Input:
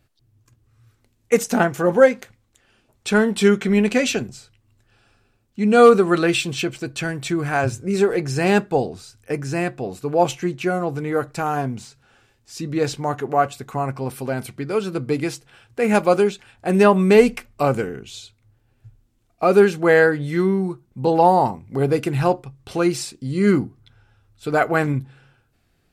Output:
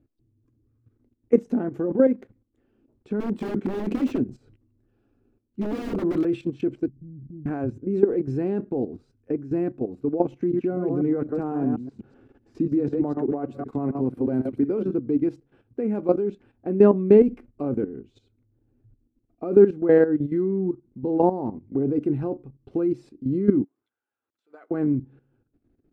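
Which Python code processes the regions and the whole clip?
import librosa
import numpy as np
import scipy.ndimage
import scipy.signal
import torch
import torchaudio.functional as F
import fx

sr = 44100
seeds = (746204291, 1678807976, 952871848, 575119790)

y = fx.chain(x, sr, fx.high_shelf(hz=8900.0, db=8.5),
    fx.overflow_wrap(gain_db=14.0),
    fx.sustainer(db_per_s=81.0), at=(3.2, 6.25))
y = fx.chain(y, sr, fx.cheby2_lowpass(hz=1200.0, order=4, stop_db=80),
    fx.transient(attack_db=-5, sustain_db=6), at=(6.88, 7.46))
y = fx.chain(y, sr, fx.reverse_delay(ms=125, wet_db=-5.0),
    fx.band_squash(depth_pct=40), at=(10.39, 14.94))
y = fx.chain(y, sr, fx.law_mismatch(coded='mu'),
    fx.highpass(hz=1100.0, slope=12),
    fx.level_steps(step_db=18), at=(23.64, 24.71))
y = fx.high_shelf(y, sr, hz=4200.0, db=-5.0)
y = fx.level_steps(y, sr, step_db=13)
y = fx.curve_eq(y, sr, hz=(170.0, 280.0, 710.0, 8300.0), db=(0, 12, -6, -25))
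y = F.gain(torch.from_numpy(y), -2.0).numpy()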